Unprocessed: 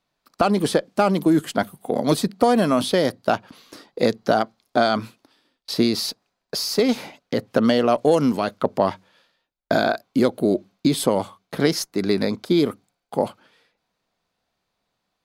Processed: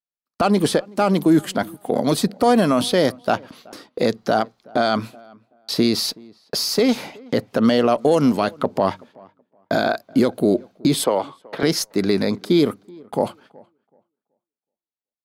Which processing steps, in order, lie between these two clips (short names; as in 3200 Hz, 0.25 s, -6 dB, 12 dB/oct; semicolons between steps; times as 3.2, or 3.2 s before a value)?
11.04–11.63 three-band isolator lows -14 dB, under 350 Hz, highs -16 dB, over 4700 Hz; limiter -10 dBFS, peak gain reduction 5.5 dB; gate -48 dBFS, range -34 dB; tape echo 0.376 s, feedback 23%, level -23 dB, low-pass 1500 Hz; gain +3 dB